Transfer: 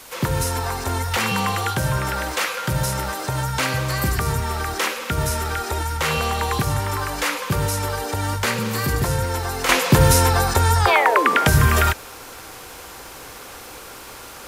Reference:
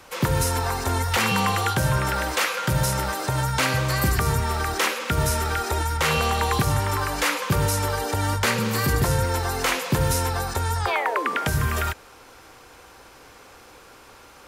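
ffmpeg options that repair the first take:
-af "adeclick=t=4,afwtdn=0.0079,asetnsamples=n=441:p=0,asendcmd='9.69 volume volume -8dB',volume=0dB"

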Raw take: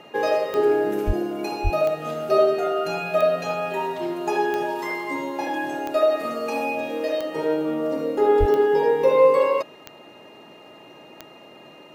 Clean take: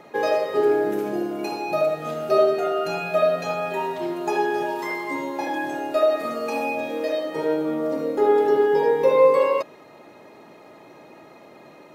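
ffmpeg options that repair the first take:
-filter_complex "[0:a]adeclick=t=4,bandreject=f=2.8k:w=30,asplit=3[a][b][c];[a]afade=t=out:st=1.06:d=0.02[d];[b]highpass=f=140:w=0.5412,highpass=f=140:w=1.3066,afade=t=in:st=1.06:d=0.02,afade=t=out:st=1.18:d=0.02[e];[c]afade=t=in:st=1.18:d=0.02[f];[d][e][f]amix=inputs=3:normalize=0,asplit=3[g][h][i];[g]afade=t=out:st=1.63:d=0.02[j];[h]highpass=f=140:w=0.5412,highpass=f=140:w=1.3066,afade=t=in:st=1.63:d=0.02,afade=t=out:st=1.75:d=0.02[k];[i]afade=t=in:st=1.75:d=0.02[l];[j][k][l]amix=inputs=3:normalize=0,asplit=3[m][n][o];[m]afade=t=out:st=8.39:d=0.02[p];[n]highpass=f=140:w=0.5412,highpass=f=140:w=1.3066,afade=t=in:st=8.39:d=0.02,afade=t=out:st=8.51:d=0.02[q];[o]afade=t=in:st=8.51:d=0.02[r];[p][q][r]amix=inputs=3:normalize=0"

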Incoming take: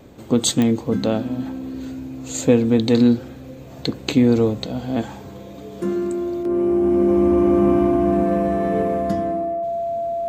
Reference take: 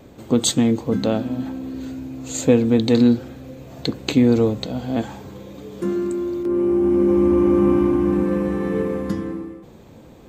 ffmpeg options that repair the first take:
-af "adeclick=t=4,bandreject=f=680:w=30"

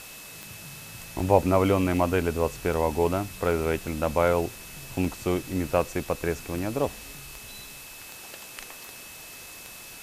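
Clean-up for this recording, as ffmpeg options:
-af "adeclick=t=4,bandreject=f=2.6k:w=30,afwtdn=0.0071"

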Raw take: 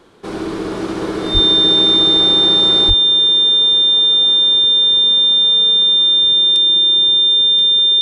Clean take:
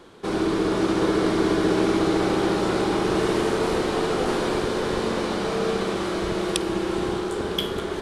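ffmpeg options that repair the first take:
-filter_complex "[0:a]bandreject=f=3.6k:w=30,asplit=3[a][b][c];[a]afade=t=out:st=1.33:d=0.02[d];[b]highpass=f=140:w=0.5412,highpass=f=140:w=1.3066,afade=t=in:st=1.33:d=0.02,afade=t=out:st=1.45:d=0.02[e];[c]afade=t=in:st=1.45:d=0.02[f];[d][e][f]amix=inputs=3:normalize=0,asplit=3[g][h][i];[g]afade=t=out:st=2.87:d=0.02[j];[h]highpass=f=140:w=0.5412,highpass=f=140:w=1.3066,afade=t=in:st=2.87:d=0.02,afade=t=out:st=2.99:d=0.02[k];[i]afade=t=in:st=2.99:d=0.02[l];[j][k][l]amix=inputs=3:normalize=0,asetnsamples=n=441:p=0,asendcmd='2.9 volume volume 10.5dB',volume=0dB"

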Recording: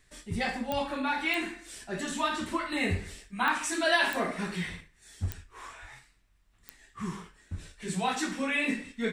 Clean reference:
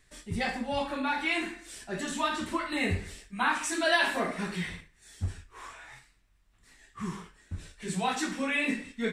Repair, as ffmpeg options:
-filter_complex "[0:a]adeclick=t=4,asplit=3[a][b][c];[a]afade=t=out:st=5.81:d=0.02[d];[b]highpass=f=140:w=0.5412,highpass=f=140:w=1.3066,afade=t=in:st=5.81:d=0.02,afade=t=out:st=5.93:d=0.02[e];[c]afade=t=in:st=5.93:d=0.02[f];[d][e][f]amix=inputs=3:normalize=0"

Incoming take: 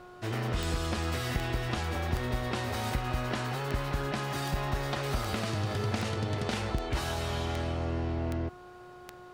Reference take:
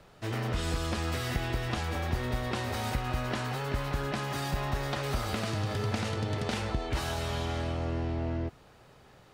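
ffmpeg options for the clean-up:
-af "adeclick=t=4,bandreject=f=360.5:t=h:w=4,bandreject=f=721:t=h:w=4,bandreject=f=1.0815k:t=h:w=4,bandreject=f=1.442k:t=h:w=4"

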